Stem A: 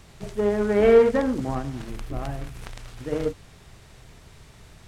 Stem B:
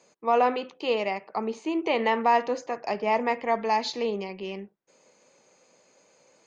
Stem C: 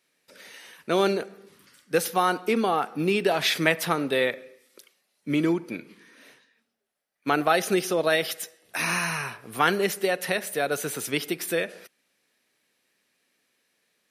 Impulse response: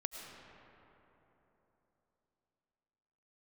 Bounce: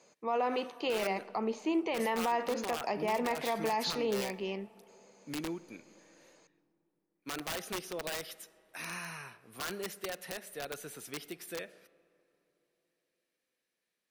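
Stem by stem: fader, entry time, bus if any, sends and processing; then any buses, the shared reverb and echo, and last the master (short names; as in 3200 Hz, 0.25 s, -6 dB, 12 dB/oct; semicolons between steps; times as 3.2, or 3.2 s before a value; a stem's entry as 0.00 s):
off
-3.0 dB, 0.00 s, send -18.5 dB, dry
-15.5 dB, 0.00 s, send -18 dB, wrapped overs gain 15.5 dB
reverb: on, RT60 3.6 s, pre-delay 65 ms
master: limiter -23 dBFS, peak gain reduction 9 dB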